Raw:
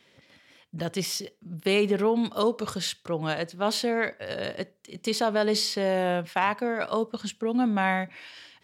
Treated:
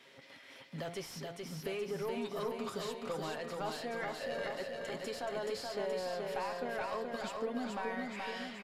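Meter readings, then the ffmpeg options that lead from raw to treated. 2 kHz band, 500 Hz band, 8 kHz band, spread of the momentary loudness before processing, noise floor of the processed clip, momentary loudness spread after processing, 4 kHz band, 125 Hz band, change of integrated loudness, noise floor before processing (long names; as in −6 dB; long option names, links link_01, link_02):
−11.0 dB, −10.5 dB, −14.0 dB, 11 LU, −57 dBFS, 6 LU, −14.0 dB, −13.0 dB, −12.0 dB, −63 dBFS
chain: -filter_complex "[0:a]aemphasis=mode=production:type=50fm,aecho=1:1:7.4:0.37,bandreject=frequency=171.7:width_type=h:width=4,bandreject=frequency=343.4:width_type=h:width=4,bandreject=frequency=515.1:width_type=h:width=4,bandreject=frequency=686.8:width_type=h:width=4,bandreject=frequency=858.5:width_type=h:width=4,bandreject=frequency=1030.2:width_type=h:width=4,bandreject=frequency=1201.9:width_type=h:width=4,bandreject=frequency=1373.6:width_type=h:width=4,bandreject=frequency=1545.3:width_type=h:width=4,bandreject=frequency=1717:width_type=h:width=4,bandreject=frequency=1888.7:width_type=h:width=4,bandreject=frequency=2060.4:width_type=h:width=4,bandreject=frequency=2232.1:width_type=h:width=4,bandreject=frequency=2403.8:width_type=h:width=4,bandreject=frequency=2575.5:width_type=h:width=4,bandreject=frequency=2747.2:width_type=h:width=4,bandreject=frequency=2918.9:width_type=h:width=4,bandreject=frequency=3090.6:width_type=h:width=4,bandreject=frequency=3262.3:width_type=h:width=4,bandreject=frequency=3434:width_type=h:width=4,bandreject=frequency=3605.7:width_type=h:width=4,bandreject=frequency=3777.4:width_type=h:width=4,bandreject=frequency=3949.1:width_type=h:width=4,bandreject=frequency=4120.8:width_type=h:width=4,bandreject=frequency=4292.5:width_type=h:width=4,bandreject=frequency=4464.2:width_type=h:width=4,bandreject=frequency=4635.9:width_type=h:width=4,acompressor=threshold=-35dB:ratio=6,asplit=2[link_01][link_02];[link_02]highpass=frequency=720:poles=1,volume=19dB,asoftclip=type=tanh:threshold=-21dB[link_03];[link_01][link_03]amix=inputs=2:normalize=0,lowpass=frequency=1100:poles=1,volume=-6dB,aecho=1:1:426|852|1278|1704|2130|2556|2982|3408:0.668|0.394|0.233|0.137|0.081|0.0478|0.0282|0.0166,aresample=32000,aresample=44100,volume=-6dB"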